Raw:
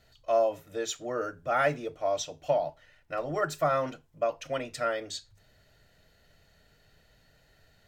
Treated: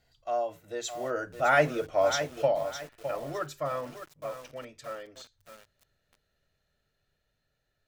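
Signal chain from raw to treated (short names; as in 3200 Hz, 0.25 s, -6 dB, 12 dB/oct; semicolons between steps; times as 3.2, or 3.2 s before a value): Doppler pass-by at 1.83, 17 m/s, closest 9 m; lo-fi delay 0.61 s, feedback 35%, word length 8-bit, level -9 dB; gain +4.5 dB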